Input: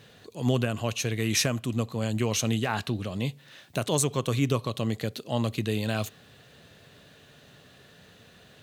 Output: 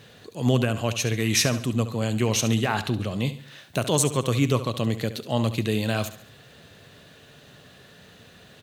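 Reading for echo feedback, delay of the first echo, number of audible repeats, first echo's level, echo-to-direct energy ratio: 41%, 70 ms, 3, -13.0 dB, -12.0 dB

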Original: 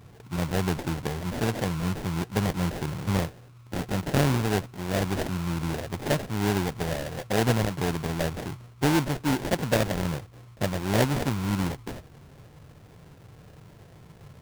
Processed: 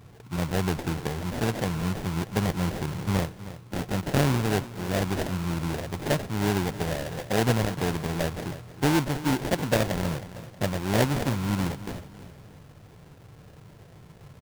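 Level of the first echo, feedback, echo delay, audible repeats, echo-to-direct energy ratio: -15.0 dB, 42%, 0.316 s, 3, -14.0 dB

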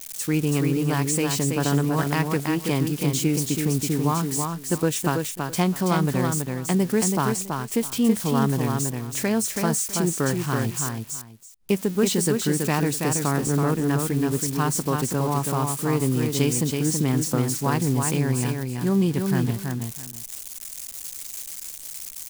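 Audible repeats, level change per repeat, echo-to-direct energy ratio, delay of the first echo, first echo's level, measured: 2, -14.5 dB, -4.5 dB, 0.328 s, -4.5 dB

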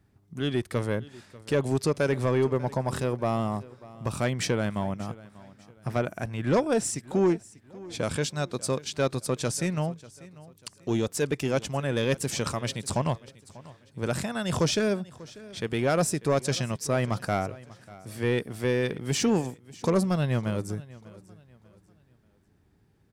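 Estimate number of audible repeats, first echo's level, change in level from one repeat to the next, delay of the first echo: 2, -20.0 dB, -9.5 dB, 0.592 s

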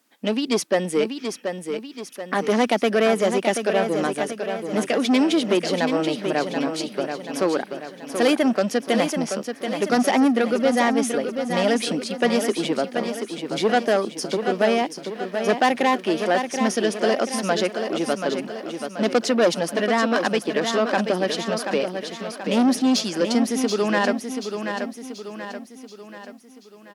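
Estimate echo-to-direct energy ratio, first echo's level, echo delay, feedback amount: -6.0 dB, -7.0 dB, 0.732 s, 49%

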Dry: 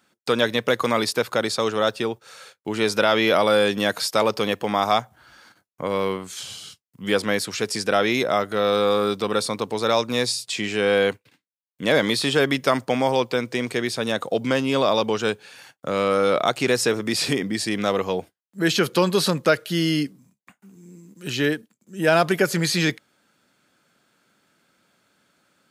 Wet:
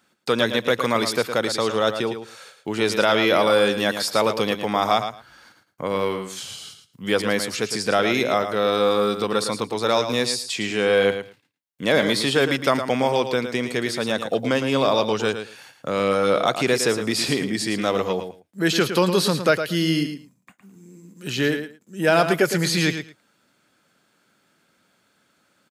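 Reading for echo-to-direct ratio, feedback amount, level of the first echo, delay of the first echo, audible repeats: -9.0 dB, 15%, -9.0 dB, 0.111 s, 2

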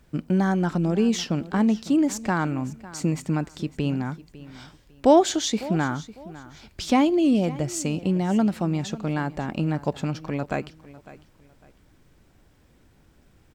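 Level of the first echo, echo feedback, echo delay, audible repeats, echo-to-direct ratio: -18.0 dB, 28%, 0.552 s, 2, -17.5 dB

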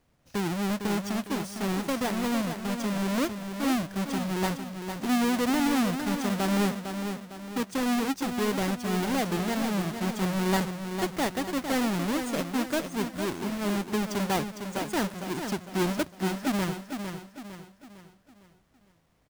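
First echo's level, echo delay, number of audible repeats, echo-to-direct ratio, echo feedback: -7.5 dB, 0.455 s, 4, -6.5 dB, 43%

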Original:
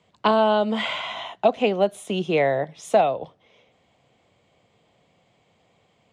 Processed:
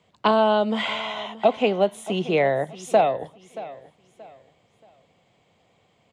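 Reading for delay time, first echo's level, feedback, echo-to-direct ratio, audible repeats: 0.628 s, -17.0 dB, 31%, -16.5 dB, 2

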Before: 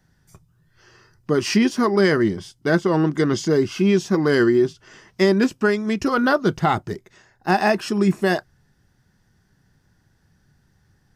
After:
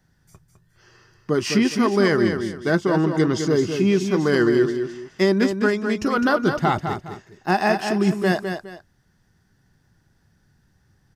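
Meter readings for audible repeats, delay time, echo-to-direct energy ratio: 2, 0.207 s, -6.5 dB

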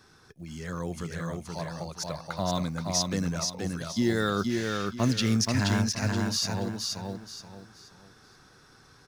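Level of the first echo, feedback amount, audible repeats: -3.5 dB, 30%, 4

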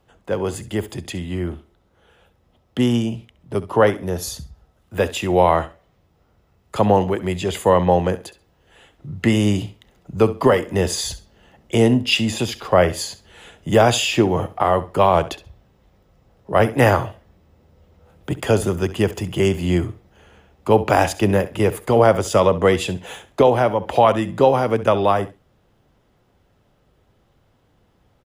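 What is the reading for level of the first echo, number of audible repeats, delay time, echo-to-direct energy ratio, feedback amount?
-16.0 dB, 2, 67 ms, -16.0 dB, 20%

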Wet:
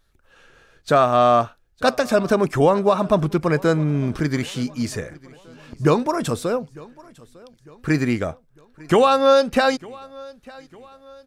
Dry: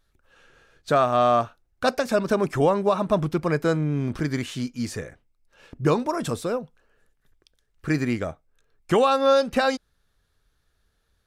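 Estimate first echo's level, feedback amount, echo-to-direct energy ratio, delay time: -23.0 dB, 46%, -22.0 dB, 0.902 s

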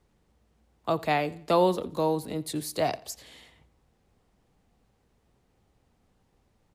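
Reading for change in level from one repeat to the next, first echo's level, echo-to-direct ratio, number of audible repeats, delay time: -8.0 dB, -21.5 dB, -21.0 dB, 2, 86 ms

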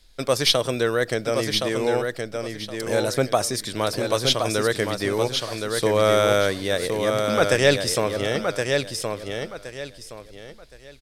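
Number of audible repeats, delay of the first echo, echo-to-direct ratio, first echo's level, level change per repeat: 3, 1.069 s, -4.5 dB, -5.0 dB, -11.5 dB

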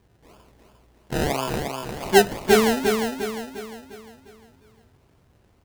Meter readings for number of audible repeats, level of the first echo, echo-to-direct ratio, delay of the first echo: 5, -5.0 dB, -4.0 dB, 0.352 s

